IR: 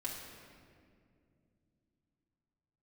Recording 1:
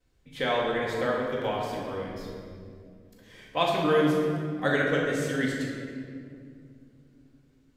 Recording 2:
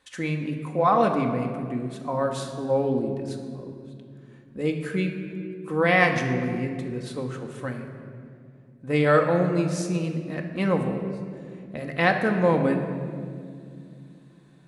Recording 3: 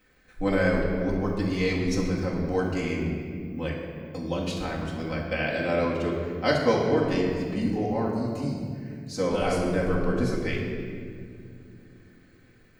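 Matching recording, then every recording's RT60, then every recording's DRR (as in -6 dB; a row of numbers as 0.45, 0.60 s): 3; 2.3, 2.4, 2.3 s; -14.0, 2.5, -5.0 dB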